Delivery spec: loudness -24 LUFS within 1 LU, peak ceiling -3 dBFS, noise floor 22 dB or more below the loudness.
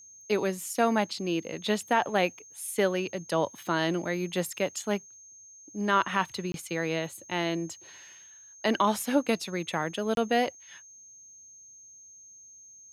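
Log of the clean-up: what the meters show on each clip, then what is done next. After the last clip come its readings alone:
dropouts 2; longest dropout 22 ms; steady tone 6400 Hz; tone level -49 dBFS; loudness -29.0 LUFS; peak -12.0 dBFS; loudness target -24.0 LUFS
-> interpolate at 6.52/10.15, 22 ms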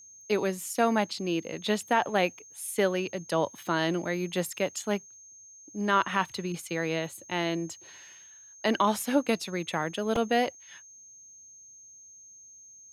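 dropouts 0; steady tone 6400 Hz; tone level -49 dBFS
-> notch 6400 Hz, Q 30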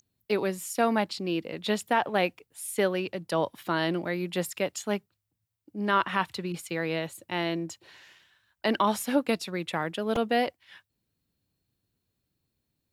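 steady tone none; loudness -29.0 LUFS; peak -12.0 dBFS; loudness target -24.0 LUFS
-> gain +5 dB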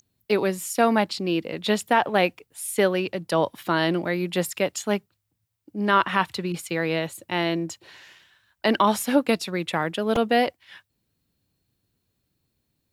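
loudness -24.0 LUFS; peak -7.0 dBFS; noise floor -76 dBFS

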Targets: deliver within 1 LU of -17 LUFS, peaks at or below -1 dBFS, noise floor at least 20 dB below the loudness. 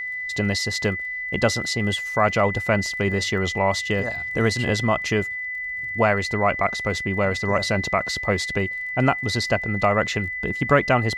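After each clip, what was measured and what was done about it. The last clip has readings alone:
ticks 21/s; steady tone 2000 Hz; tone level -27 dBFS; loudness -22.5 LUFS; peak -3.5 dBFS; loudness target -17.0 LUFS
-> de-click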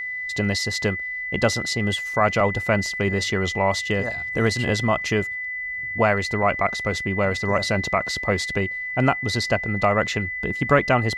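ticks 0/s; steady tone 2000 Hz; tone level -27 dBFS
-> notch 2000 Hz, Q 30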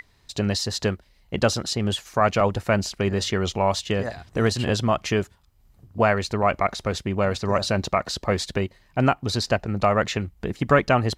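steady tone none; loudness -24.0 LUFS; peak -4.0 dBFS; loudness target -17.0 LUFS
-> gain +7 dB; limiter -1 dBFS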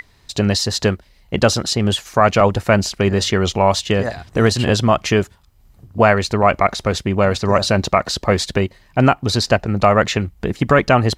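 loudness -17.0 LUFS; peak -1.0 dBFS; noise floor -53 dBFS

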